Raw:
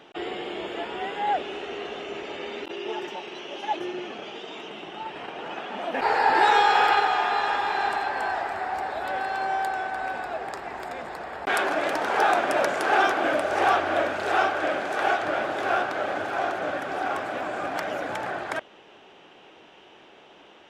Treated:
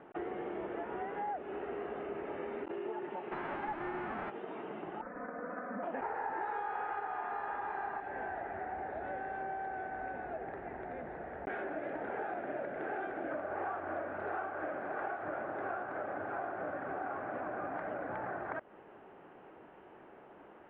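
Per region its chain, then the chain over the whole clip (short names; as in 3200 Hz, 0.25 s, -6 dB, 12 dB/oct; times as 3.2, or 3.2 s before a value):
3.31–4.29 spectral whitening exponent 0.3 + overdrive pedal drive 24 dB, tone 1200 Hz, clips at -13.5 dBFS
5.01–5.83 band shelf 4500 Hz -13 dB 1.2 oct + fixed phaser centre 560 Hz, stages 8 + comb 4 ms
8–13.31 Chebyshev low-pass 3800 Hz, order 4 + bell 1100 Hz -13 dB 0.82 oct
whole clip: LPF 1800 Hz 24 dB/oct; low shelf 320 Hz +4 dB; compressor, threshold -32 dBFS; gain -4 dB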